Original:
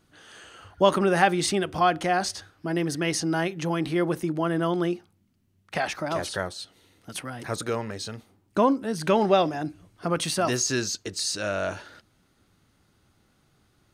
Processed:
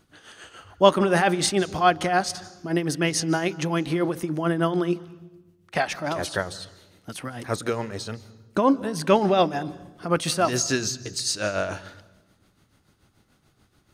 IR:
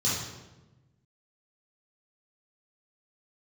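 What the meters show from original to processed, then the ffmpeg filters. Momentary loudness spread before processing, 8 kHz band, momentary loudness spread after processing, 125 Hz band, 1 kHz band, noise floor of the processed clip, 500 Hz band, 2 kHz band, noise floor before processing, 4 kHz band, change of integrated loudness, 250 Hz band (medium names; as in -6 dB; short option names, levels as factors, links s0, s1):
14 LU, +1.5 dB, 15 LU, +2.0 dB, +1.5 dB, -64 dBFS, +2.0 dB, +1.5 dB, -66 dBFS, +2.0 dB, +2.0 dB, +1.5 dB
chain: -filter_complex "[0:a]tremolo=f=6.9:d=0.62,asplit=2[s0][s1];[1:a]atrim=start_sample=2205,adelay=149[s2];[s1][s2]afir=irnorm=-1:irlink=0,volume=0.0316[s3];[s0][s3]amix=inputs=2:normalize=0,volume=1.68"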